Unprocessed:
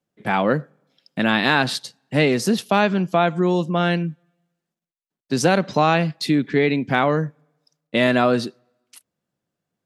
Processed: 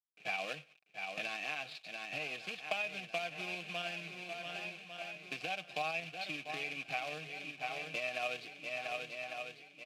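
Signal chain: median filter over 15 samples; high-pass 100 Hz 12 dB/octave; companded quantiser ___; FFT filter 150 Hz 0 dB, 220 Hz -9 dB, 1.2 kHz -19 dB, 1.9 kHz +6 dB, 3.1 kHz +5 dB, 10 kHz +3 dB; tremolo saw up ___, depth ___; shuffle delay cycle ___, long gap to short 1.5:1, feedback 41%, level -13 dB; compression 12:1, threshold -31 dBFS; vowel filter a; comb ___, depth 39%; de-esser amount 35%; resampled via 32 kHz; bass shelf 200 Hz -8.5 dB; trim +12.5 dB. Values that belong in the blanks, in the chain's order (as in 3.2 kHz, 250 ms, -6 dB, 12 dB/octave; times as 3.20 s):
4-bit, 11 Hz, 40%, 1149 ms, 6.4 ms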